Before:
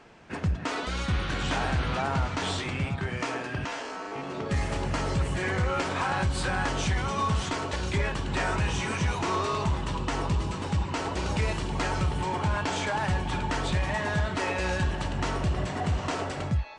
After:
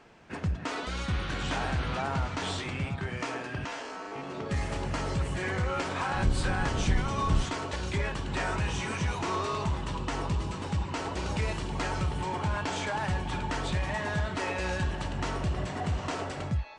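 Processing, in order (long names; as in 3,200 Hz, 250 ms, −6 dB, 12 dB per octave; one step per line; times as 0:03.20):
0:06.13–0:07.48: sub-octave generator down 1 octave, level +4 dB
level −3 dB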